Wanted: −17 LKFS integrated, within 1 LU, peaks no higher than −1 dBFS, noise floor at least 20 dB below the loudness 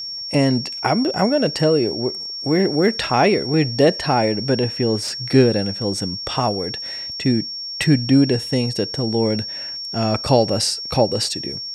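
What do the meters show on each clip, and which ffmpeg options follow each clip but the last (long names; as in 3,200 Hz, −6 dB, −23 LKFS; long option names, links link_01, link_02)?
interfering tone 5,500 Hz; level of the tone −27 dBFS; integrated loudness −19.5 LKFS; sample peak −2.0 dBFS; target loudness −17.0 LKFS
→ -af "bandreject=frequency=5500:width=30"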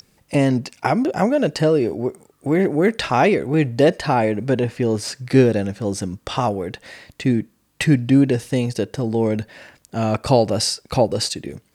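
interfering tone none found; integrated loudness −20.0 LKFS; sample peak −2.5 dBFS; target loudness −17.0 LKFS
→ -af "volume=3dB,alimiter=limit=-1dB:level=0:latency=1"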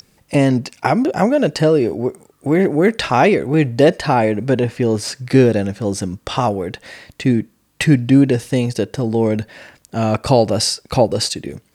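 integrated loudness −17.0 LKFS; sample peak −1.0 dBFS; background noise floor −60 dBFS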